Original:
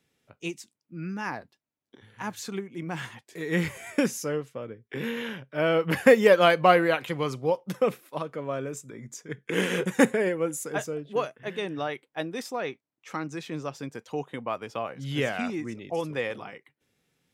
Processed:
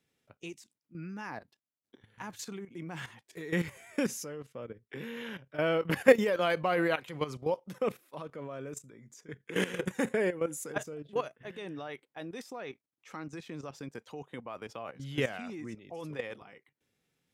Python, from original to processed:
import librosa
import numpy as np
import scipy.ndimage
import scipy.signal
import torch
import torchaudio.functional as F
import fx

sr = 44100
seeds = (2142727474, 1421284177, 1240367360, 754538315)

y = fx.level_steps(x, sr, step_db=13)
y = y * librosa.db_to_amplitude(-1.5)